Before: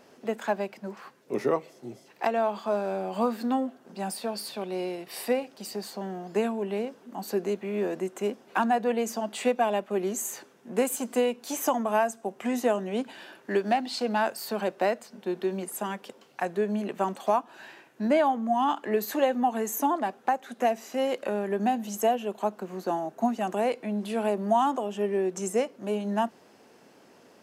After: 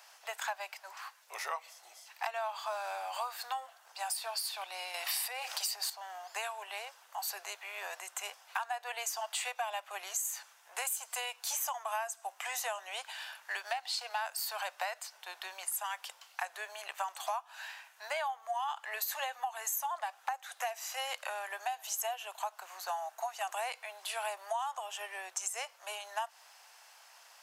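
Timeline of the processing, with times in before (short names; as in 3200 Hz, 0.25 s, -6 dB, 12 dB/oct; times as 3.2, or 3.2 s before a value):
4.94–5.9 fast leveller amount 50%
whole clip: steep high-pass 750 Hz 36 dB/oct; high shelf 3100 Hz +8 dB; compressor 6:1, threshold -33 dBFS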